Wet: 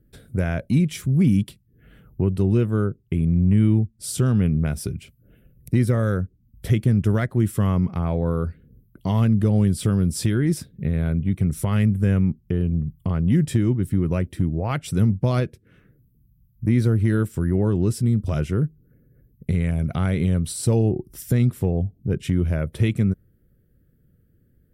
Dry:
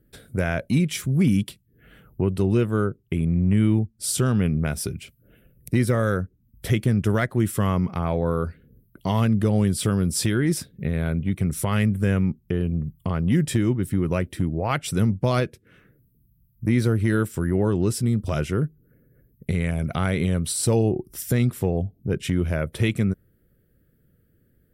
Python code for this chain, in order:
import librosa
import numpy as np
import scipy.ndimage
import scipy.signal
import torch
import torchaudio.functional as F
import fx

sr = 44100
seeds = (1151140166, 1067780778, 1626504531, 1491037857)

y = fx.low_shelf(x, sr, hz=320.0, db=8.5)
y = F.gain(torch.from_numpy(y), -4.5).numpy()